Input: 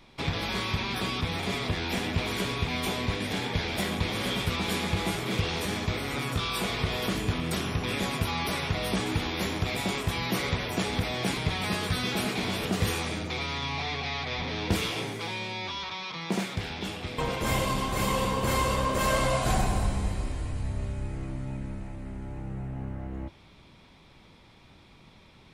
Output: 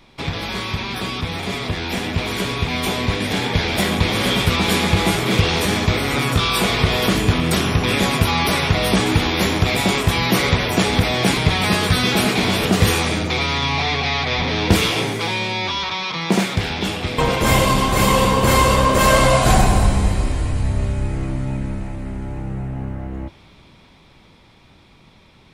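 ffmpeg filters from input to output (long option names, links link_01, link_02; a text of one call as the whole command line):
ffmpeg -i in.wav -af "dynaudnorm=framelen=200:gausssize=31:maxgain=7dB,volume=5dB" out.wav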